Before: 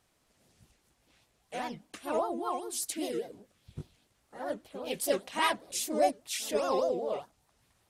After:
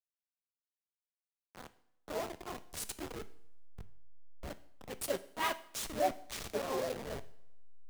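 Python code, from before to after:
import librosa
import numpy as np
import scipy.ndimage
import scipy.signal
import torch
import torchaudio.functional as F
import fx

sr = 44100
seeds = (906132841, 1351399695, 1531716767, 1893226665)

y = fx.delta_hold(x, sr, step_db=-27.5)
y = fx.rev_double_slope(y, sr, seeds[0], early_s=0.67, late_s=2.2, knee_db=-18, drr_db=12.0)
y = fx.band_widen(y, sr, depth_pct=40)
y = y * librosa.db_to_amplitude(-7.5)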